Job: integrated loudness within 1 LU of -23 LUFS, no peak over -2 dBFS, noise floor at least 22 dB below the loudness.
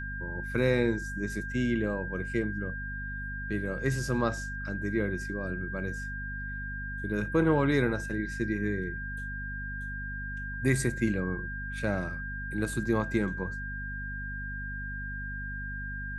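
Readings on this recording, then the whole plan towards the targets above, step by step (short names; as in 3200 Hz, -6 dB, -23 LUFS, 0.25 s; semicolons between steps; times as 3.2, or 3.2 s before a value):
hum 50 Hz; harmonics up to 250 Hz; hum level -36 dBFS; steady tone 1600 Hz; tone level -37 dBFS; loudness -32.0 LUFS; peak -12.5 dBFS; loudness target -23.0 LUFS
-> notches 50/100/150/200/250 Hz; notch 1600 Hz, Q 30; gain +9 dB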